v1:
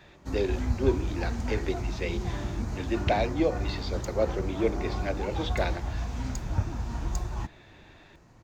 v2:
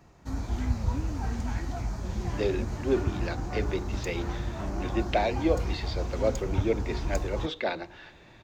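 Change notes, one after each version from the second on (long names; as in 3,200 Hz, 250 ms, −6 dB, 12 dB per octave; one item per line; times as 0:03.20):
speech: entry +2.05 s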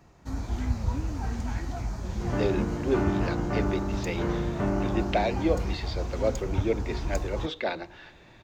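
second sound +11.5 dB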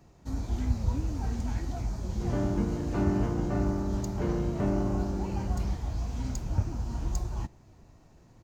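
speech: muted
master: add parametric band 1,600 Hz −6.5 dB 2.1 octaves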